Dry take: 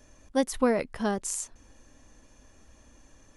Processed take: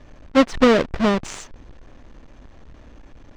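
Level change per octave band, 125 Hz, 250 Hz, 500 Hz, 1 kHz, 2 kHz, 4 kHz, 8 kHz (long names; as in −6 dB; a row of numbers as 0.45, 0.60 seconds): +11.5, +10.5, +9.5, +9.5, +11.5, +13.5, −3.5 decibels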